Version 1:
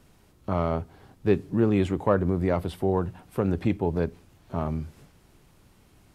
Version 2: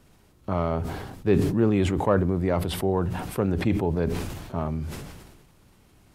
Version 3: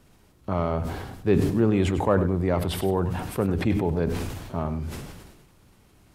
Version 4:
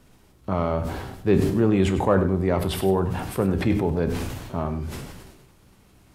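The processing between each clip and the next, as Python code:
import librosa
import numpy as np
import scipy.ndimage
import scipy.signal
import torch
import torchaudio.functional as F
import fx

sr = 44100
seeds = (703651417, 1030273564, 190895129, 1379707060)

y1 = fx.sustainer(x, sr, db_per_s=40.0)
y2 = fx.echo_feedback(y1, sr, ms=99, feedback_pct=17, wet_db=-12)
y3 = fx.comb_fb(y2, sr, f0_hz=64.0, decay_s=0.35, harmonics='all', damping=0.0, mix_pct=60)
y3 = y3 * librosa.db_to_amplitude(6.5)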